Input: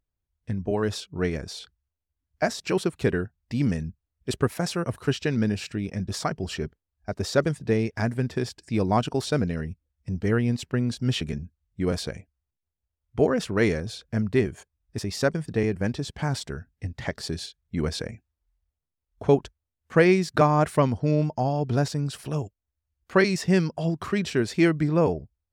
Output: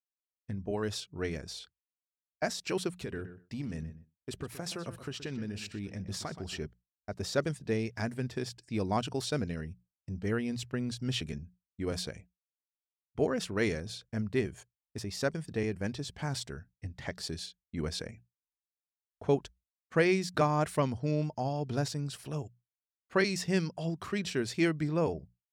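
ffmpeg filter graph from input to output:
ffmpeg -i in.wav -filter_complex "[0:a]asettb=1/sr,asplit=3[link_01][link_02][link_03];[link_01]atrim=end=3.034[link_04];[link_02]atrim=start=3.03:end=6.59,asetpts=PTS-STARTPTS,afade=type=in:duration=0.004:curve=qsin,afade=type=out:start_time=3.556:duration=0.004:curve=qsin,acompressor=threshold=-24dB:ratio=12:attack=3.2:release=140:knee=1:detection=peak,asplit=2[link_05][link_06];[link_06]adelay=124,lowpass=frequency=3200:poles=1,volume=-12dB,asplit=2[link_07][link_08];[link_08]adelay=124,lowpass=frequency=3200:poles=1,volume=0.18[link_09];[link_05][link_07][link_09]amix=inputs=3:normalize=0,atrim=end_sample=156996[link_10];[link_03]atrim=start=6.586[link_11];[link_04][link_10]acrossfade=duration=0.004:curve1=hsin:curve2=qsin[link_12];[link_12][link_11]acrossfade=duration=0.004:curve1=qsin:curve2=hsin,bandreject=frequency=60:width_type=h:width=6,bandreject=frequency=120:width_type=h:width=6,bandreject=frequency=180:width_type=h:width=6,agate=range=-33dB:threshold=-44dB:ratio=3:detection=peak,adynamicequalizer=threshold=0.0126:dfrequency=2200:dqfactor=0.7:tfrequency=2200:tqfactor=0.7:attack=5:release=100:ratio=0.375:range=2.5:mode=boostabove:tftype=highshelf,volume=-8dB" out.wav

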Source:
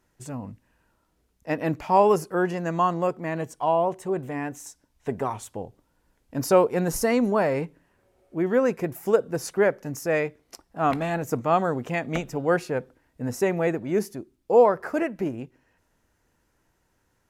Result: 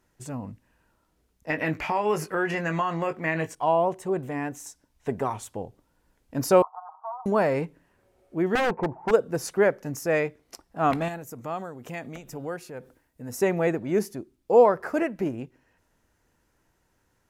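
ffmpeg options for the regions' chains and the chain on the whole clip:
ffmpeg -i in.wav -filter_complex "[0:a]asettb=1/sr,asplit=3[link_01][link_02][link_03];[link_01]atrim=end=1.504[link_04];[link_02]atrim=start=1.5:end=3.55,asetpts=PTS-STARTPTS,afade=type=in:duration=0.004:curve=qsin,afade=type=out:start_time=2.046:duration=0.004:curve=qsin,equalizer=frequency=2100:width=1.1:gain=12,acompressor=threshold=-23dB:ratio=4:attack=3.2:release=140:knee=1:detection=peak,asplit=2[link_05][link_06];[link_06]adelay=19,volume=-7.5dB[link_07];[link_05][link_07]amix=inputs=2:normalize=0,atrim=end_sample=90405[link_08];[link_03]atrim=start=3.546[link_09];[link_04][link_08]acrossfade=duration=0.004:curve1=hsin:curve2=qsin[link_10];[link_10][link_09]acrossfade=duration=0.004:curve1=qsin:curve2=hsin,asettb=1/sr,asplit=3[link_11][link_12][link_13];[link_11]atrim=end=6.624[link_14];[link_12]atrim=start=6.62:end=7.26,asetpts=PTS-STARTPTS,afade=type=in:duration=0.004:curve=qsin,afade=type=out:start_time=0.636:duration=0.004:curve=qsin,asuperpass=centerf=950:order=12:qfactor=1.7,aecho=1:1:6.4:0.87,atrim=end_sample=28224[link_15];[link_13]atrim=start=7.256[link_16];[link_14][link_15]acrossfade=duration=0.004:curve1=hsin:curve2=qsin[link_17];[link_17][link_16]acrossfade=duration=0.004:curve1=qsin:curve2=hsin,asettb=1/sr,asplit=3[link_18][link_19][link_20];[link_18]atrim=end=8.554[link_21];[link_19]atrim=start=8.55:end=9.11,asetpts=PTS-STARTPTS,afade=type=in:duration=0.004:curve=qsin,afade=type=out:start_time=0.556:duration=0.004:curve=qsin,deesser=0.95,lowpass=frequency=900:width_type=q:width=10,aeval=exprs='0.119*(abs(mod(val(0)/0.119+3,4)-2)-1)':channel_layout=same[link_22];[link_20]atrim=start=9.106[link_23];[link_21][link_22]acrossfade=duration=0.004:curve1=hsin:curve2=qsin[link_24];[link_24][link_23]acrossfade=duration=0.004:curve1=qsin:curve2=hsin,asettb=1/sr,asplit=3[link_25][link_26][link_27];[link_25]atrim=end=11.084[link_28];[link_26]atrim=start=11.08:end=13.39,asetpts=PTS-STARTPTS,afade=type=in:duration=0.004:curve=qsin,afade=type=out:start_time=2.306:duration=0.004:curve=qsin,highshelf=frequency=7900:gain=11.5,acompressor=threshold=-36dB:ratio=2:attack=3.2:release=140:knee=1:detection=peak,tremolo=f=2.2:d=0.53[link_29];[link_27]atrim=start=13.386[link_30];[link_28][link_29]acrossfade=duration=0.004:curve1=hsin:curve2=qsin[link_31];[link_31][link_30]acrossfade=duration=0.004:curve1=qsin:curve2=hsin" out.wav

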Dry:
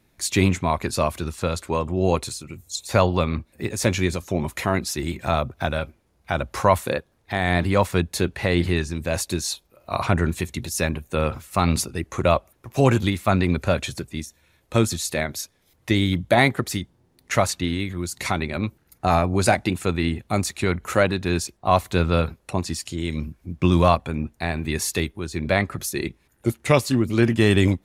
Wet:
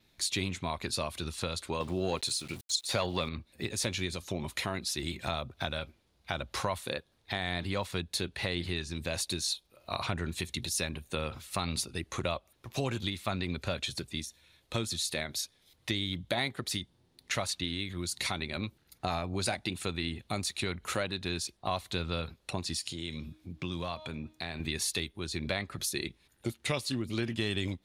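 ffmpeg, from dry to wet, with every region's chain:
ffmpeg -i in.wav -filter_complex "[0:a]asettb=1/sr,asplit=3[link_01][link_02][link_03];[link_01]atrim=end=1.804[link_04];[link_02]atrim=start=1.8:end=3.29,asetpts=PTS-STARTPTS,afade=type=in:duration=0.004:curve=qsin,afade=type=out:start_time=1.486:duration=0.004:curve=qsin,highpass=frequency=130:poles=1,acontrast=76,aeval=exprs='val(0)*gte(abs(val(0)),0.0106)':channel_layout=same[link_05];[link_03]atrim=start=3.286[link_06];[link_04][link_05]acrossfade=duration=0.004:curve1=hsin:curve2=qsin[link_07];[link_07][link_06]acrossfade=duration=0.004:curve1=qsin:curve2=hsin,asettb=1/sr,asplit=3[link_08][link_09][link_10];[link_08]atrim=end=22.794[link_11];[link_09]atrim=start=22.79:end=24.6,asetpts=PTS-STARTPTS,afade=type=in:duration=0.004:curve=qsin,afade=type=out:start_time=1.806:duration=0.004:curve=qsin,highpass=72,bandreject=frequency=311.3:width_type=h:width=4,bandreject=frequency=622.6:width_type=h:width=4,bandreject=frequency=933.9:width_type=h:width=4,bandreject=frequency=1245.2:width_type=h:width=4,bandreject=frequency=1556.5:width_type=h:width=4,bandreject=frequency=1867.8:width_type=h:width=4,bandreject=frequency=2179.1:width_type=h:width=4,bandreject=frequency=2490.4:width_type=h:width=4,bandreject=frequency=2801.7:width_type=h:width=4,bandreject=frequency=3113:width_type=h:width=4,bandreject=frequency=3424.3:width_type=h:width=4,bandreject=frequency=3735.6:width_type=h:width=4,bandreject=frequency=4046.9:width_type=h:width=4,bandreject=frequency=4358.2:width_type=h:width=4,bandreject=frequency=4669.5:width_type=h:width=4,bandreject=frequency=4980.8:width_type=h:width=4,bandreject=frequency=5292.1:width_type=h:width=4,bandreject=frequency=5603.4:width_type=h:width=4,bandreject=frequency=5914.7:width_type=h:width=4,bandreject=frequency=6226:width_type=h:width=4,bandreject=frequency=6537.3:width_type=h:width=4,bandreject=frequency=6848.6:width_type=h:width=4,bandreject=frequency=7159.9:width_type=h:width=4,bandreject=frequency=7471.2:width_type=h:width=4,bandreject=frequency=7782.5:width_type=h:width=4,bandreject=frequency=8093.8:width_type=h:width=4,bandreject=frequency=8405.1:width_type=h:width=4,bandreject=frequency=8716.4:width_type=h:width=4,bandreject=frequency=9027.7:width_type=h:width=4,bandreject=frequency=9339:width_type=h:width=4,bandreject=frequency=9650.3:width_type=h:width=4,bandreject=frequency=9961.6:width_type=h:width=4,bandreject=frequency=10272.9:width_type=h:width=4,bandreject=frequency=10584.2:width_type=h:width=4,bandreject=frequency=10895.5:width_type=h:width=4,bandreject=frequency=11206.8:width_type=h:width=4,bandreject=frequency=11518.1:width_type=h:width=4,bandreject=frequency=11829.4:width_type=h:width=4,bandreject=frequency=12140.7:width_type=h:width=4,bandreject=frequency=12452:width_type=h:width=4,acompressor=threshold=-33dB:ratio=2:attack=3.2:release=140:knee=1:detection=peak[link_12];[link_10]atrim=start=24.596[link_13];[link_11][link_12]acrossfade=duration=0.004:curve1=hsin:curve2=qsin[link_14];[link_14][link_13]acrossfade=duration=0.004:curve1=qsin:curve2=hsin,equalizer=frequency=3800:width=1.2:gain=11.5,acompressor=threshold=-25dB:ratio=3,adynamicequalizer=threshold=0.002:dfrequency=9500:dqfactor=5.2:tfrequency=9500:tqfactor=5.2:attack=5:release=100:ratio=0.375:range=4:mode=boostabove:tftype=bell,volume=-6.5dB" out.wav

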